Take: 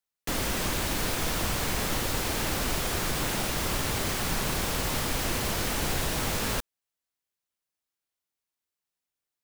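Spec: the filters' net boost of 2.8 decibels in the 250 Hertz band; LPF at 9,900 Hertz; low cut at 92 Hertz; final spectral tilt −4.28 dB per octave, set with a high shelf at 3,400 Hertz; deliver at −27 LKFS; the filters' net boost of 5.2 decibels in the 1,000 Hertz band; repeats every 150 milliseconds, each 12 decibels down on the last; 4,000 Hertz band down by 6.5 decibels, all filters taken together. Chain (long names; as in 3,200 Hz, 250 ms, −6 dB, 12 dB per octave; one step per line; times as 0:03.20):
high-pass filter 92 Hz
low-pass filter 9,900 Hz
parametric band 250 Hz +3.5 dB
parametric band 1,000 Hz +7 dB
high-shelf EQ 3,400 Hz −4 dB
parametric band 4,000 Hz −6 dB
repeating echo 150 ms, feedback 25%, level −12 dB
level +2 dB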